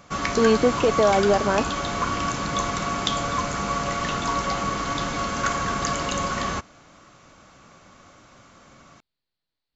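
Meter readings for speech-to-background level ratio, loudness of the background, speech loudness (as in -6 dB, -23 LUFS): 4.0 dB, -25.5 LUFS, -21.5 LUFS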